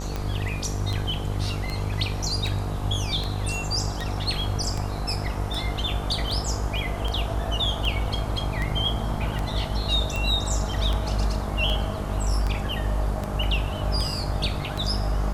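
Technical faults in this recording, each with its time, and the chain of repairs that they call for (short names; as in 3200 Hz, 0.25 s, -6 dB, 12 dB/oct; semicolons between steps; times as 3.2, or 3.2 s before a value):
buzz 50 Hz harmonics 25 -30 dBFS
tick 78 rpm -15 dBFS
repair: de-click; de-hum 50 Hz, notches 25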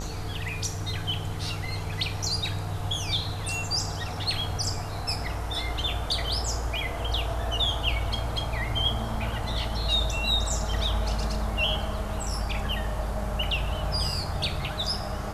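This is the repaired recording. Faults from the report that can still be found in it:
none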